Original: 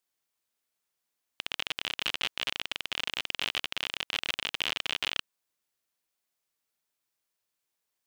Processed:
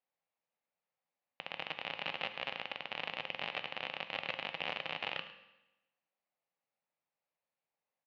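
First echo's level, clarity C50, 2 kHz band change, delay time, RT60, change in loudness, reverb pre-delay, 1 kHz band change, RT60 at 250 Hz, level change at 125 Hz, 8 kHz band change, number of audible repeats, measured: -15.5 dB, 10.0 dB, -5.5 dB, 106 ms, 1.0 s, -7.5 dB, 9 ms, -0.5 dB, 1.0 s, -2.5 dB, under -25 dB, 1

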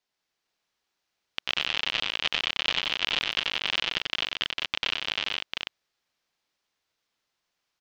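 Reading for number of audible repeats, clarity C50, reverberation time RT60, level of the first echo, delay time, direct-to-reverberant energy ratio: 5, no reverb, no reverb, -3.5 dB, 92 ms, no reverb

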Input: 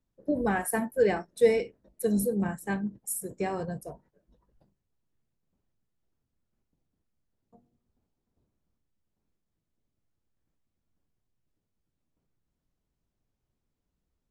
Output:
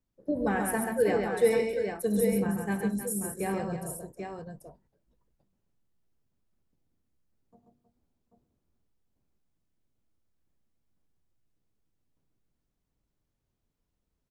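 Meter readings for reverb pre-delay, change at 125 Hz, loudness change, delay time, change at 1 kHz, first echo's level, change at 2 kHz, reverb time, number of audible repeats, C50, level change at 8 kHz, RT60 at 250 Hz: no reverb, +1.0 dB, 0.0 dB, 69 ms, +0.5 dB, -19.5 dB, +0.5 dB, no reverb, 5, no reverb, +0.5 dB, no reverb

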